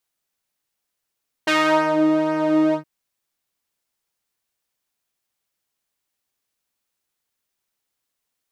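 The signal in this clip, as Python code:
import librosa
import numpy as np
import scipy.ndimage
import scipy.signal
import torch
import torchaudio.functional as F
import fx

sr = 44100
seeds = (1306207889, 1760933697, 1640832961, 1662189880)

y = fx.sub_patch_pwm(sr, seeds[0], note=63, wave2='saw', interval_st=0, detune_cents=20, level2_db=-9.0, sub_db=-15.0, noise_db=-30.0, kind='bandpass', cutoff_hz=150.0, q=0.88, env_oct=4.0, env_decay_s=0.49, env_sustain_pct=40, attack_ms=11.0, decay_s=0.52, sustain_db=-6.5, release_s=0.1, note_s=1.27, lfo_hz=2.0, width_pct=24, width_swing_pct=16)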